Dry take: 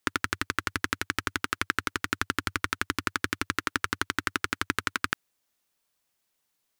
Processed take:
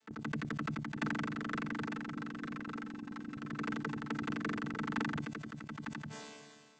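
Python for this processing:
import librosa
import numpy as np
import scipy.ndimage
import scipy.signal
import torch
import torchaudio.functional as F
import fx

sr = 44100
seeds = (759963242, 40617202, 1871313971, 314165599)

y = fx.chord_vocoder(x, sr, chord='bare fifth', root=50)
y = fx.comb(y, sr, ms=3.8, depth=0.83, at=(1.94, 3.37))
y = fx.over_compress(y, sr, threshold_db=-35.0, ratio=-0.5)
y = y + 10.0 ** (-6.5 / 20.0) * np.pad(y, (int(902 * sr / 1000.0), 0))[:len(y)]
y = fx.sustainer(y, sr, db_per_s=31.0)
y = y * 10.0 ** (-1.5 / 20.0)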